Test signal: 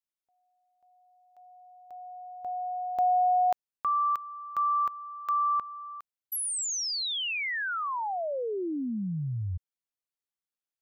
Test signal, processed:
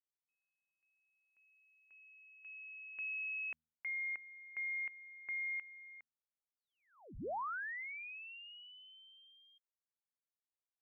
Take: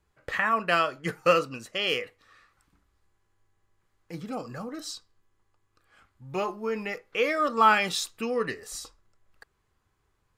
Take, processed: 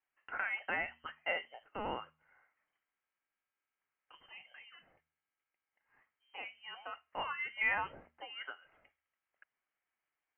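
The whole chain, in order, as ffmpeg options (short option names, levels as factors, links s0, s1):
-af "aderivative,lowpass=f=2800:t=q:w=0.5098,lowpass=f=2800:t=q:w=0.6013,lowpass=f=2800:t=q:w=0.9,lowpass=f=2800:t=q:w=2.563,afreqshift=-3300,bandreject=f=78.78:t=h:w=4,bandreject=f=157.56:t=h:w=4,bandreject=f=236.34:t=h:w=4,volume=1.26"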